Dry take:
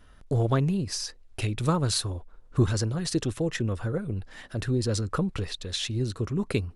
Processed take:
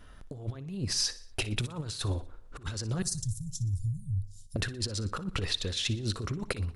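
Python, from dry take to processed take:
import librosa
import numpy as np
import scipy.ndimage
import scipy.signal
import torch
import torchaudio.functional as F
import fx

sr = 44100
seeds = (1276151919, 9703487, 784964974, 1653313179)

y = fx.cheby2_bandstop(x, sr, low_hz=360.0, high_hz=2200.0, order=4, stop_db=60, at=(3.02, 4.56))
y = fx.dynamic_eq(y, sr, hz=3800.0, q=0.74, threshold_db=-47.0, ratio=4.0, max_db=4)
y = fx.over_compress(y, sr, threshold_db=-30.0, ratio=-0.5)
y = fx.echo_feedback(y, sr, ms=60, feedback_pct=49, wet_db=-17.0)
y = y * librosa.db_to_amplitude(-1.5)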